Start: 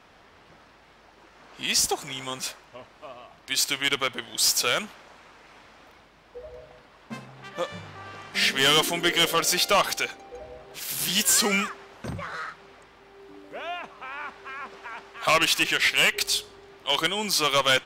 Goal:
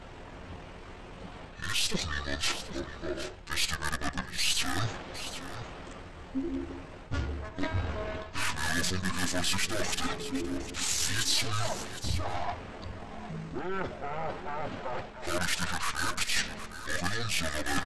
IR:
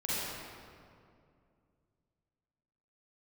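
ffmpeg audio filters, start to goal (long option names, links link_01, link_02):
-filter_complex "[0:a]aeval=exprs='0.188*(cos(1*acos(clip(val(0)/0.188,-1,1)))-cos(1*PI/2))+0.00168*(cos(2*acos(clip(val(0)/0.188,-1,1)))-cos(2*PI/2))+0.00211*(cos(4*acos(clip(val(0)/0.188,-1,1)))-cos(4*PI/2))+0.0188*(cos(5*acos(clip(val(0)/0.188,-1,1)))-cos(5*PI/2))+0.0376*(cos(6*acos(clip(val(0)/0.188,-1,1)))-cos(6*PI/2))':channel_layout=same,areverse,acompressor=threshold=-34dB:ratio=12,areverse,highshelf=frequency=4800:gain=11,aecho=1:1:6.1:0.73,asplit=2[link_01][link_02];[link_02]aecho=0:1:760:0.251[link_03];[link_01][link_03]amix=inputs=2:normalize=0,aeval=exprs='val(0)+0.00126*(sin(2*PI*60*n/s)+sin(2*PI*2*60*n/s)/2+sin(2*PI*3*60*n/s)/3+sin(2*PI*4*60*n/s)/4+sin(2*PI*5*60*n/s)/5)':channel_layout=same,lowshelf=frequency=340:gain=9,asetrate=24046,aresample=44100,atempo=1.83401"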